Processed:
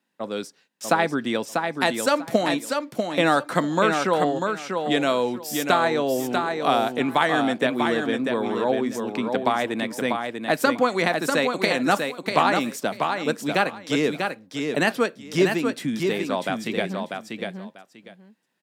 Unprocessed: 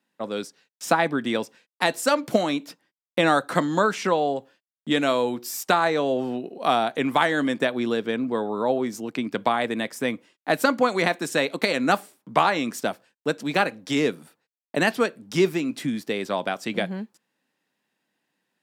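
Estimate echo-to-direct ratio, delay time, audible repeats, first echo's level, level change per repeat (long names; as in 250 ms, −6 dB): −5.0 dB, 643 ms, 2, −5.0 dB, −14.5 dB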